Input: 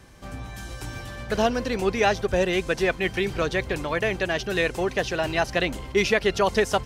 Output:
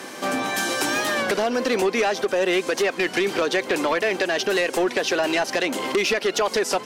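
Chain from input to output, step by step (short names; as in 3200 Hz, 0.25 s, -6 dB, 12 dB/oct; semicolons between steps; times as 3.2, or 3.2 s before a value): HPF 250 Hz 24 dB/oct; in parallel at +2 dB: limiter -18.5 dBFS, peak gain reduction 10.5 dB; on the sum: compressor 6:1, threshold -28 dBFS, peak gain reduction 14.5 dB; sine folder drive 7 dB, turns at -15.5 dBFS; record warp 33 1/3 rpm, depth 100 cents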